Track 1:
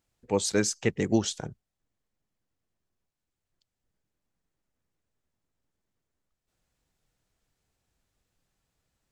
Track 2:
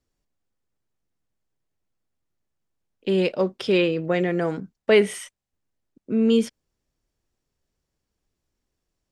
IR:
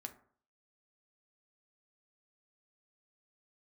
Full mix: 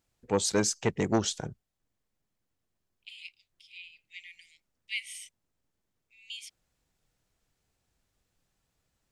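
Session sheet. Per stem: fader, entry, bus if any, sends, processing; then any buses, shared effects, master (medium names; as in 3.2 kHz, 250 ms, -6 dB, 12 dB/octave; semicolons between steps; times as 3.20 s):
+0.5 dB, 0.00 s, no send, none
-7.0 dB, 0.00 s, no send, steep high-pass 2.1 kHz 96 dB/octave; auto duck -16 dB, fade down 0.60 s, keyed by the first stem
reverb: none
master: transformer saturation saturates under 630 Hz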